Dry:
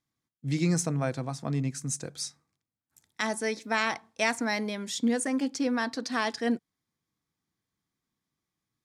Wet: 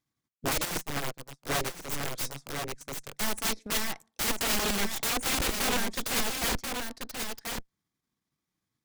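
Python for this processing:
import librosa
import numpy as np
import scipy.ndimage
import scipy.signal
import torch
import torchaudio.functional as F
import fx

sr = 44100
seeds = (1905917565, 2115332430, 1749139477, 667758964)

y = fx.peak_eq(x, sr, hz=120.0, db=12.0, octaves=2.4, at=(4.35, 5.58))
y = fx.transient(y, sr, attack_db=4, sustain_db=-11)
y = fx.cheby_harmonics(y, sr, harmonics=(3, 8), levels_db=(-40, -7), full_scale_db=-7.5)
y = (np.mod(10.0 ** (24.0 / 20.0) * y + 1.0, 2.0) - 1.0) / 10.0 ** (24.0 / 20.0)
y = y + 10.0 ** (-5.5 / 20.0) * np.pad(y, (int(1035 * sr / 1000.0), 0))[:len(y)]
y = fx.upward_expand(y, sr, threshold_db=-43.0, expansion=2.5, at=(0.65, 1.96))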